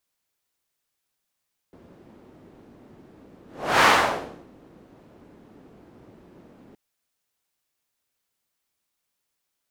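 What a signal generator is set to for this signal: whoosh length 5.02 s, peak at 2.11 s, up 0.41 s, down 0.71 s, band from 290 Hz, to 1.3 kHz, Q 1.1, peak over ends 35 dB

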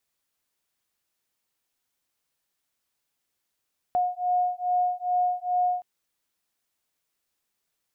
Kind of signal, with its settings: beating tones 720 Hz, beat 2.4 Hz, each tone -25.5 dBFS 1.87 s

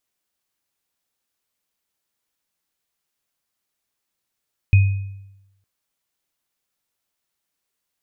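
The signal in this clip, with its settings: sine partials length 0.91 s, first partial 98.1 Hz, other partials 2.5 kHz, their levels -15 dB, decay 0.93 s, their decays 0.63 s, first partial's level -7 dB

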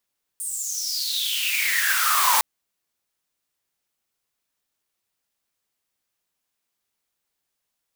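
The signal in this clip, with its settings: swept filtered noise white, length 2.01 s highpass, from 9.2 kHz, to 880 Hz, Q 10, exponential, gain ramp +17.5 dB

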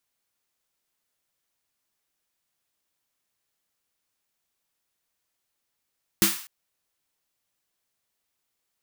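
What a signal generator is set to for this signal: snare drum length 0.25 s, tones 200 Hz, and 330 Hz, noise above 990 Hz, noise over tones 1.5 dB, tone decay 0.20 s, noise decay 0.49 s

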